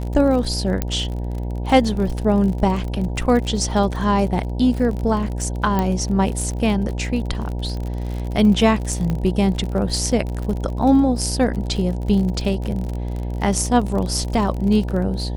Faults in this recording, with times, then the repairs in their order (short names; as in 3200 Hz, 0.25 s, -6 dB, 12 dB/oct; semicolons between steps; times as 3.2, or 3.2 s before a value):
buzz 60 Hz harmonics 16 -25 dBFS
crackle 42/s -26 dBFS
0.82 pop -7 dBFS
5.79 pop -8 dBFS
9.1 pop -13 dBFS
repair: de-click; de-hum 60 Hz, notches 16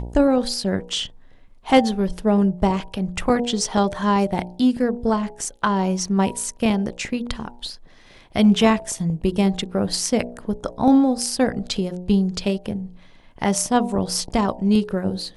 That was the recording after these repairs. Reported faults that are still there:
5.79 pop